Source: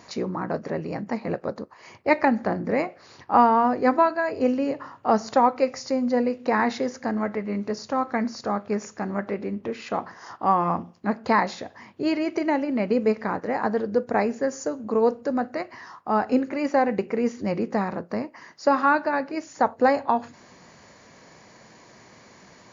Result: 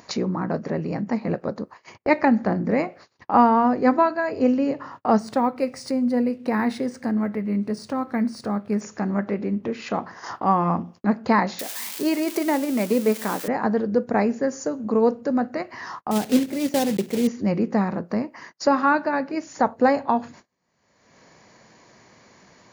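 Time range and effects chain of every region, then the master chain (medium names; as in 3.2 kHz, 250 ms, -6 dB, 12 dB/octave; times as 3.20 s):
5.19–8.81 s: peaking EQ 900 Hz -5 dB 2.5 oct + decimation joined by straight lines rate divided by 3×
11.59–13.48 s: zero-crossing glitches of -21.5 dBFS + high-pass 230 Hz
16.11–17.28 s: block-companded coder 3-bit + high-pass 91 Hz + peaking EQ 1.2 kHz -10.5 dB 1.4 oct
whole clip: dynamic bell 190 Hz, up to +6 dB, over -39 dBFS, Q 1.1; gate -44 dBFS, range -39 dB; upward compressor, threshold -24 dBFS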